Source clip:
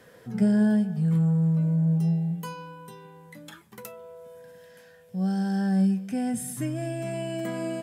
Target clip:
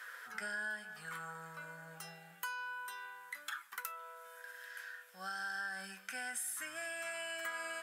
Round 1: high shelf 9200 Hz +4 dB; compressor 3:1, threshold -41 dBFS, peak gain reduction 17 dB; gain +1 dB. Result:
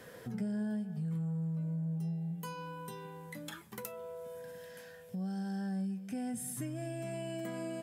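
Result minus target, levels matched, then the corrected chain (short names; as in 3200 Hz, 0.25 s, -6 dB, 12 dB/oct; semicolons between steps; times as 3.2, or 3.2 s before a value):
1000 Hz band -6.5 dB
resonant high-pass 1400 Hz, resonance Q 4.3; high shelf 9200 Hz +4 dB; compressor 3:1, threshold -41 dBFS, peak gain reduction 9 dB; gain +1 dB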